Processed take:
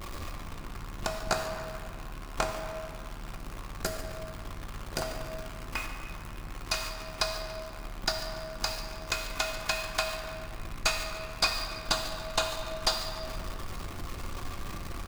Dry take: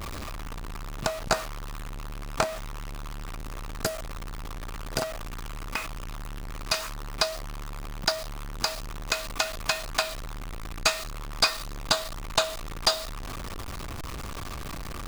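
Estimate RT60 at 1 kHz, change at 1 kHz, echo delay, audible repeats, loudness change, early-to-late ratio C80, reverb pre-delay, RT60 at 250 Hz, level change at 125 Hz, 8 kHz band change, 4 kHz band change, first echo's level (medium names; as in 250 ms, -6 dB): 2.3 s, -3.0 dB, 144 ms, 1, -3.0 dB, 5.5 dB, 3 ms, 3.5 s, -3.0 dB, -4.0 dB, -4.0 dB, -15.5 dB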